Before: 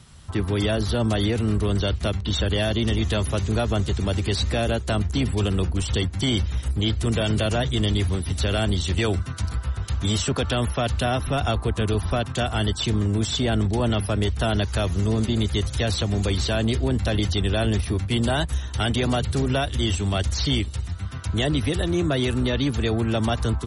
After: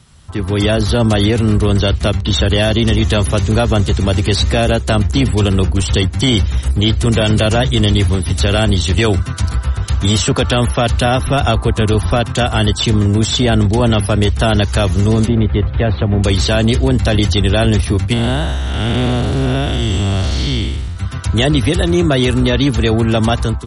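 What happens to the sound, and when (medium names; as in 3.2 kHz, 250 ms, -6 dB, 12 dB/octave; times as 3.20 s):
15.28–16.24 s: Gaussian low-pass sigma 3.5 samples
18.13–20.97 s: spectral blur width 268 ms
whole clip: level rider gain up to 8.5 dB; trim +1.5 dB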